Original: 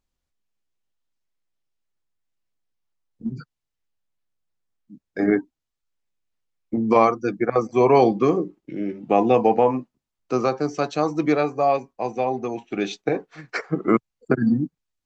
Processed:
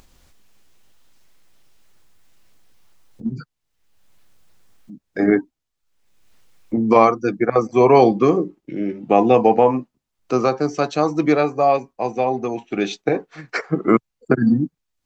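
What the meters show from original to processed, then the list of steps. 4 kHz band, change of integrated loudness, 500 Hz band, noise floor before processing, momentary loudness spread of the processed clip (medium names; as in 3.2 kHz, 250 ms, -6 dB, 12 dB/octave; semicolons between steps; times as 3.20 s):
+3.5 dB, +3.5 dB, +3.5 dB, -83 dBFS, 14 LU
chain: upward compressor, threshold -37 dBFS; trim +3.5 dB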